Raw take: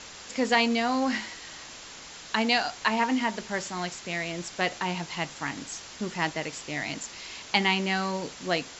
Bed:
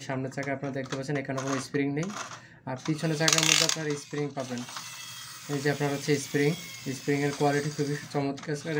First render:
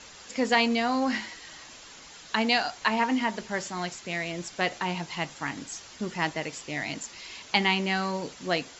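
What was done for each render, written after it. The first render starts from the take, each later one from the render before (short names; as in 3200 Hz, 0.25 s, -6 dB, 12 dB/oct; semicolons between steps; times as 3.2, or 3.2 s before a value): denoiser 6 dB, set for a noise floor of -45 dBFS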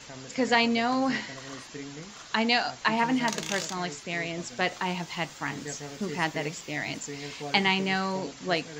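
add bed -12.5 dB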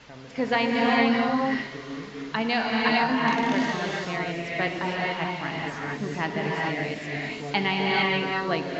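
air absorption 200 m; non-linear reverb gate 0.48 s rising, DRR -3 dB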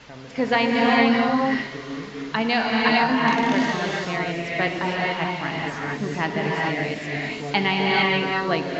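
gain +3.5 dB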